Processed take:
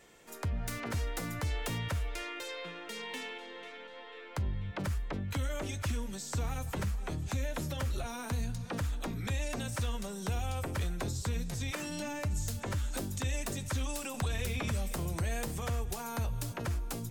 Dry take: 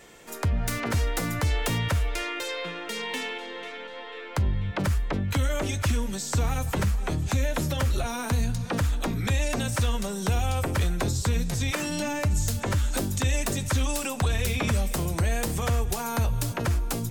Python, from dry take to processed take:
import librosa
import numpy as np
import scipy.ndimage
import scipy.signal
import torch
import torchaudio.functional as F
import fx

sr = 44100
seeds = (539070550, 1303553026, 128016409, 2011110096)

y = fx.band_squash(x, sr, depth_pct=70, at=(14.14, 15.48))
y = F.gain(torch.from_numpy(y), -9.0).numpy()